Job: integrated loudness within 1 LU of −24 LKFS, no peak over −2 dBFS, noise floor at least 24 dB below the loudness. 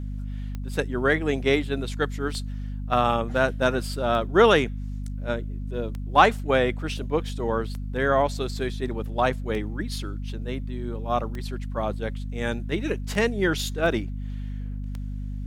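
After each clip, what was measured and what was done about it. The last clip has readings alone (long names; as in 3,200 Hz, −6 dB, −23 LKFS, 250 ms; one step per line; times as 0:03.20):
number of clicks 9; mains hum 50 Hz; hum harmonics up to 250 Hz; level of the hum −29 dBFS; integrated loudness −26.0 LKFS; sample peak −2.0 dBFS; target loudness −24.0 LKFS
→ click removal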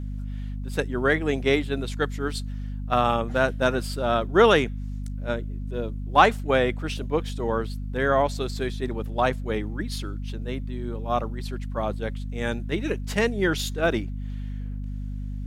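number of clicks 0; mains hum 50 Hz; hum harmonics up to 250 Hz; level of the hum −29 dBFS
→ mains-hum notches 50/100/150/200/250 Hz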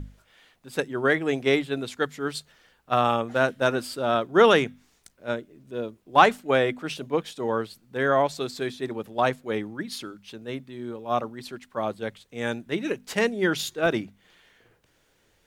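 mains hum none found; integrated loudness −25.5 LKFS; sample peak −2.0 dBFS; target loudness −24.0 LKFS
→ level +1.5 dB
brickwall limiter −2 dBFS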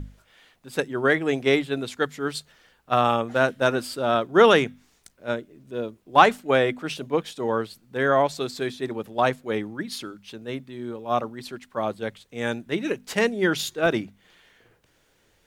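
integrated loudness −24.0 LKFS; sample peak −2.0 dBFS; background noise floor −64 dBFS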